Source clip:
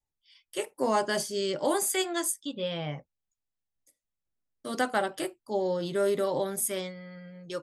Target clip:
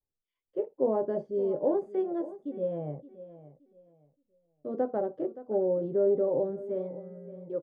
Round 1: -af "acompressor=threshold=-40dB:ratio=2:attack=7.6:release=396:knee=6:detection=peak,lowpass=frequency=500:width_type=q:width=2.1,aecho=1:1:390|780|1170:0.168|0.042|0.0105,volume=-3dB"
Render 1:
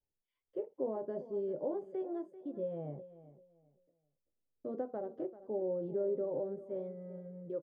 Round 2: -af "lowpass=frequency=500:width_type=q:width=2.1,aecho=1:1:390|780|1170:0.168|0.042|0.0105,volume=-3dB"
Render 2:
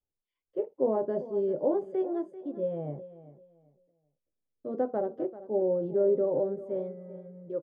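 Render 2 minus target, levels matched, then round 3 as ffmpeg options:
echo 181 ms early
-af "lowpass=frequency=500:width_type=q:width=2.1,aecho=1:1:571|1142|1713:0.168|0.042|0.0105,volume=-3dB"

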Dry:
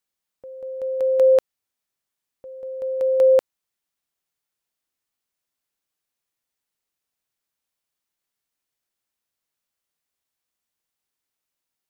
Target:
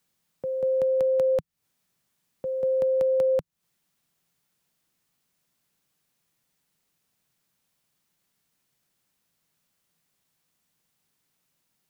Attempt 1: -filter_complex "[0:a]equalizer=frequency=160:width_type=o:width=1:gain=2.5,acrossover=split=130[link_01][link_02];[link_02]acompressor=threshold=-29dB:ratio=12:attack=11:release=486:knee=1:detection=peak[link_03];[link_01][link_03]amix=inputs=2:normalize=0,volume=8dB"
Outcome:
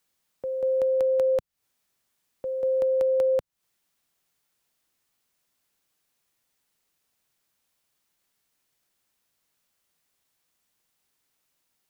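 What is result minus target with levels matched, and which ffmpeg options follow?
125 Hz band −6.5 dB
-filter_complex "[0:a]equalizer=frequency=160:width_type=o:width=1:gain=12.5,acrossover=split=130[link_01][link_02];[link_02]acompressor=threshold=-29dB:ratio=12:attack=11:release=486:knee=1:detection=peak[link_03];[link_01][link_03]amix=inputs=2:normalize=0,volume=8dB"

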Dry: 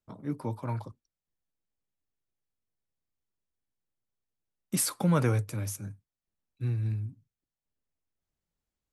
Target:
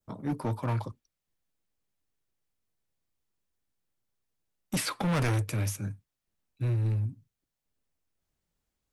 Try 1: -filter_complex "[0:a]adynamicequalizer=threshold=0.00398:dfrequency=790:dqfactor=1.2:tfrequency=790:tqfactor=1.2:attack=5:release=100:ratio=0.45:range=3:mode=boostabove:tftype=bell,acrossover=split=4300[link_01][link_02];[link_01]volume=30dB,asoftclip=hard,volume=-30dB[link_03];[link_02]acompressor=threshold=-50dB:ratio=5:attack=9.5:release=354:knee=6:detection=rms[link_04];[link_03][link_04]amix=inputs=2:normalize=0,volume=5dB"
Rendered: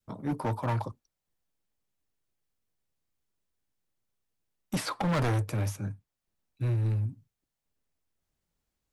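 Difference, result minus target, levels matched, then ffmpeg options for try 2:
downward compressor: peak gain reduction +7.5 dB; 1,000 Hz band +3.0 dB
-filter_complex "[0:a]adynamicequalizer=threshold=0.00398:dfrequency=2500:dqfactor=1.2:tfrequency=2500:tqfactor=1.2:attack=5:release=100:ratio=0.45:range=3:mode=boostabove:tftype=bell,acrossover=split=4300[link_01][link_02];[link_01]volume=30dB,asoftclip=hard,volume=-30dB[link_03];[link_02]acompressor=threshold=-40.5dB:ratio=5:attack=9.5:release=354:knee=6:detection=rms[link_04];[link_03][link_04]amix=inputs=2:normalize=0,volume=5dB"

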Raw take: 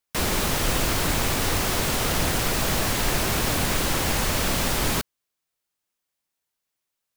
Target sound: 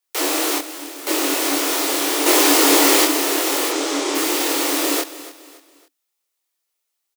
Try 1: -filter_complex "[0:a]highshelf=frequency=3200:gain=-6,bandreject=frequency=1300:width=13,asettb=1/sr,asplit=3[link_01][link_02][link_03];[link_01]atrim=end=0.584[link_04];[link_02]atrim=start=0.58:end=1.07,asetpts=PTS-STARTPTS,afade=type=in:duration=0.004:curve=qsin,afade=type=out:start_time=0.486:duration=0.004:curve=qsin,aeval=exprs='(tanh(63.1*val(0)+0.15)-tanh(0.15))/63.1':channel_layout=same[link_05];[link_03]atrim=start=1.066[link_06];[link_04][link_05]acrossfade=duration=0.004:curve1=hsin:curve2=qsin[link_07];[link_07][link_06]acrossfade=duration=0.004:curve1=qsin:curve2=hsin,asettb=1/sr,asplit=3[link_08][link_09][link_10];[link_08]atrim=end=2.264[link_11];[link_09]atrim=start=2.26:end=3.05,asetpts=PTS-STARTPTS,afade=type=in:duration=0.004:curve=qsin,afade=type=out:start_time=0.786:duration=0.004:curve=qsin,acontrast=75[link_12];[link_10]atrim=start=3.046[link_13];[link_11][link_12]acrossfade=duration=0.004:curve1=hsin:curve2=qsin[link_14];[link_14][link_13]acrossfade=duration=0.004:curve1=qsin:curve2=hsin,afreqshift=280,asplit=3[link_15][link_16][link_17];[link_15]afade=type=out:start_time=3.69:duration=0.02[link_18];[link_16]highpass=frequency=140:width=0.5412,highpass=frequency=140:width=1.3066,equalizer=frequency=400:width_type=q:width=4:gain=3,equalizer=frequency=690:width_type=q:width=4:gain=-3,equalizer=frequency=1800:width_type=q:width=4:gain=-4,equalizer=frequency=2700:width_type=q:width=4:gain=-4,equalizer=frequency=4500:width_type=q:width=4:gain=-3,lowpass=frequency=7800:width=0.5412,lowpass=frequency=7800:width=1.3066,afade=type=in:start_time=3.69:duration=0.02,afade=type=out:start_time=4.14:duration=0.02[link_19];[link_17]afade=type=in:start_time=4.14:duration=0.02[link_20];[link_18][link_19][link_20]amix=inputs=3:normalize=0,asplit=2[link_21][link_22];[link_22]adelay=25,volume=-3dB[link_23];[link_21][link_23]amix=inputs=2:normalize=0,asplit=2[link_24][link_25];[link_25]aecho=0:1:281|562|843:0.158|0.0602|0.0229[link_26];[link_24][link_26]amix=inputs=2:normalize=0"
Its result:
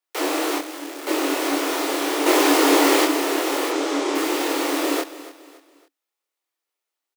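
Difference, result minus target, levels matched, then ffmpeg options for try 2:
8,000 Hz band −5.0 dB
-filter_complex "[0:a]highshelf=frequency=3200:gain=4.5,bandreject=frequency=1300:width=13,asettb=1/sr,asplit=3[link_01][link_02][link_03];[link_01]atrim=end=0.584[link_04];[link_02]atrim=start=0.58:end=1.07,asetpts=PTS-STARTPTS,afade=type=in:duration=0.004:curve=qsin,afade=type=out:start_time=0.486:duration=0.004:curve=qsin,aeval=exprs='(tanh(63.1*val(0)+0.15)-tanh(0.15))/63.1':channel_layout=same[link_05];[link_03]atrim=start=1.066[link_06];[link_04][link_05]acrossfade=duration=0.004:curve1=hsin:curve2=qsin[link_07];[link_07][link_06]acrossfade=duration=0.004:curve1=qsin:curve2=hsin,asettb=1/sr,asplit=3[link_08][link_09][link_10];[link_08]atrim=end=2.264[link_11];[link_09]atrim=start=2.26:end=3.05,asetpts=PTS-STARTPTS,afade=type=in:duration=0.004:curve=qsin,afade=type=out:start_time=0.786:duration=0.004:curve=qsin,acontrast=75[link_12];[link_10]atrim=start=3.046[link_13];[link_11][link_12]acrossfade=duration=0.004:curve1=hsin:curve2=qsin[link_14];[link_14][link_13]acrossfade=duration=0.004:curve1=qsin:curve2=hsin,afreqshift=280,asplit=3[link_15][link_16][link_17];[link_15]afade=type=out:start_time=3.69:duration=0.02[link_18];[link_16]highpass=frequency=140:width=0.5412,highpass=frequency=140:width=1.3066,equalizer=frequency=400:width_type=q:width=4:gain=3,equalizer=frequency=690:width_type=q:width=4:gain=-3,equalizer=frequency=1800:width_type=q:width=4:gain=-4,equalizer=frequency=2700:width_type=q:width=4:gain=-4,equalizer=frequency=4500:width_type=q:width=4:gain=-3,lowpass=frequency=7800:width=0.5412,lowpass=frequency=7800:width=1.3066,afade=type=in:start_time=3.69:duration=0.02,afade=type=out:start_time=4.14:duration=0.02[link_19];[link_17]afade=type=in:start_time=4.14:duration=0.02[link_20];[link_18][link_19][link_20]amix=inputs=3:normalize=0,asplit=2[link_21][link_22];[link_22]adelay=25,volume=-3dB[link_23];[link_21][link_23]amix=inputs=2:normalize=0,asplit=2[link_24][link_25];[link_25]aecho=0:1:281|562|843:0.158|0.0602|0.0229[link_26];[link_24][link_26]amix=inputs=2:normalize=0"

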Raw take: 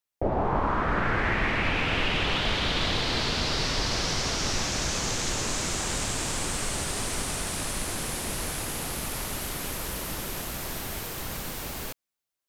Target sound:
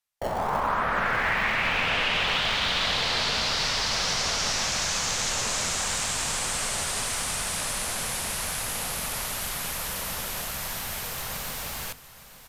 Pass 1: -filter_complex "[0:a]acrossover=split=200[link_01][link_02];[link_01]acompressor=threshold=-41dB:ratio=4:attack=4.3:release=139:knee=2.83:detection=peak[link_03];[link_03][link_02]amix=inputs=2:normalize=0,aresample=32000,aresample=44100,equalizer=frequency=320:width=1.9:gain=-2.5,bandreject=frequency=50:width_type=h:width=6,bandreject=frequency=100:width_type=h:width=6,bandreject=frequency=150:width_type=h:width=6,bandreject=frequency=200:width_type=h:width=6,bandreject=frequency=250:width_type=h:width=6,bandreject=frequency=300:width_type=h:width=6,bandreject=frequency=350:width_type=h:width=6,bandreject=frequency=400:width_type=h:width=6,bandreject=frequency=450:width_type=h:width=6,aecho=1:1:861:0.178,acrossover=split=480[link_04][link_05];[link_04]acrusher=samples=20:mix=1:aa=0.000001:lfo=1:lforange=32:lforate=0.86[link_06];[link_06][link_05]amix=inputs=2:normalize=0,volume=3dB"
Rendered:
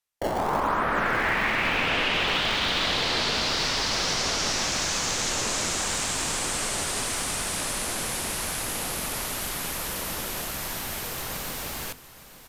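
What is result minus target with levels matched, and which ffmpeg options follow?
250 Hz band +4.5 dB
-filter_complex "[0:a]acrossover=split=200[link_01][link_02];[link_01]acompressor=threshold=-41dB:ratio=4:attack=4.3:release=139:knee=2.83:detection=peak[link_03];[link_03][link_02]amix=inputs=2:normalize=0,aresample=32000,aresample=44100,equalizer=frequency=320:width=1.9:gain=-12.5,bandreject=frequency=50:width_type=h:width=6,bandreject=frequency=100:width_type=h:width=6,bandreject=frequency=150:width_type=h:width=6,bandreject=frequency=200:width_type=h:width=6,bandreject=frequency=250:width_type=h:width=6,bandreject=frequency=300:width_type=h:width=6,bandreject=frequency=350:width_type=h:width=6,bandreject=frequency=400:width_type=h:width=6,bandreject=frequency=450:width_type=h:width=6,aecho=1:1:861:0.178,acrossover=split=480[link_04][link_05];[link_04]acrusher=samples=20:mix=1:aa=0.000001:lfo=1:lforange=32:lforate=0.86[link_06];[link_06][link_05]amix=inputs=2:normalize=0,volume=3dB"

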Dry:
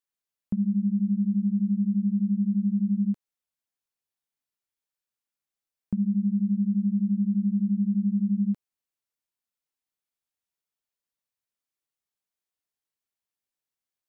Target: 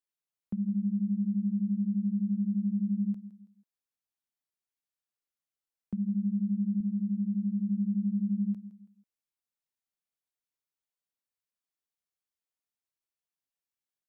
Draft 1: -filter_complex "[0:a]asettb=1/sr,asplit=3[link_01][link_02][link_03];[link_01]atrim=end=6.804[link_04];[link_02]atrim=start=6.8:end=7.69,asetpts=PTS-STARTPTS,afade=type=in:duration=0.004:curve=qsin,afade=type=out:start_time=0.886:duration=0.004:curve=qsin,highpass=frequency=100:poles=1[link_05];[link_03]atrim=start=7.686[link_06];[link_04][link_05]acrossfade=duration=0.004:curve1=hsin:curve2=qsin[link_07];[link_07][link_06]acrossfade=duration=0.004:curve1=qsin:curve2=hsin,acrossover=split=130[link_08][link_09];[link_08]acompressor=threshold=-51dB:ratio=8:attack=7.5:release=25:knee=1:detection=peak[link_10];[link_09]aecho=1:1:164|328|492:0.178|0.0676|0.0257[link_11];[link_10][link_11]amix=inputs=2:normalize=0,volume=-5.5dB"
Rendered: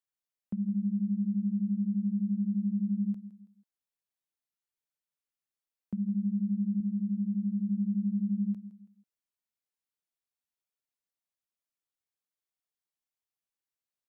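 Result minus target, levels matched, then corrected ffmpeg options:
downward compressor: peak gain reduction +8 dB
-filter_complex "[0:a]asettb=1/sr,asplit=3[link_01][link_02][link_03];[link_01]atrim=end=6.804[link_04];[link_02]atrim=start=6.8:end=7.69,asetpts=PTS-STARTPTS,afade=type=in:duration=0.004:curve=qsin,afade=type=out:start_time=0.886:duration=0.004:curve=qsin,highpass=frequency=100:poles=1[link_05];[link_03]atrim=start=7.686[link_06];[link_04][link_05]acrossfade=duration=0.004:curve1=hsin:curve2=qsin[link_07];[link_07][link_06]acrossfade=duration=0.004:curve1=qsin:curve2=hsin,acrossover=split=130[link_08][link_09];[link_08]acompressor=threshold=-42dB:ratio=8:attack=7.5:release=25:knee=1:detection=peak[link_10];[link_09]aecho=1:1:164|328|492:0.178|0.0676|0.0257[link_11];[link_10][link_11]amix=inputs=2:normalize=0,volume=-5.5dB"

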